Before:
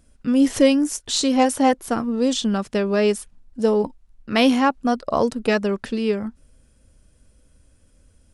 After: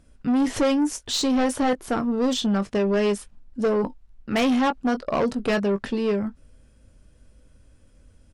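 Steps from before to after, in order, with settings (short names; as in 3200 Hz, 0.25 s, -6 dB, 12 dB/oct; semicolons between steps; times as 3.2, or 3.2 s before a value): high shelf 7100 Hz -11.5 dB; doubler 20 ms -11 dB; soft clip -18.5 dBFS, distortion -10 dB; gain +1.5 dB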